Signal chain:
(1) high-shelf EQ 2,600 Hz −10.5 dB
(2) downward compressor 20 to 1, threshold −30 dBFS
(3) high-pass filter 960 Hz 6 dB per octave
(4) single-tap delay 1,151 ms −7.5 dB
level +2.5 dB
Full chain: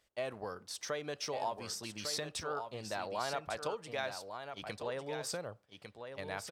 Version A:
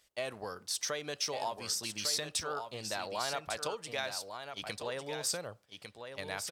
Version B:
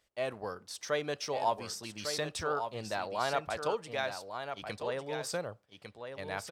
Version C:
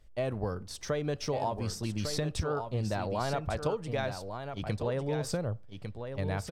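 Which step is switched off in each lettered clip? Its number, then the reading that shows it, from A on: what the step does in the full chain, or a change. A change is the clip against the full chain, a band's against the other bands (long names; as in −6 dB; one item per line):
1, 8 kHz band +7.5 dB
2, average gain reduction 2.5 dB
3, 125 Hz band +15.5 dB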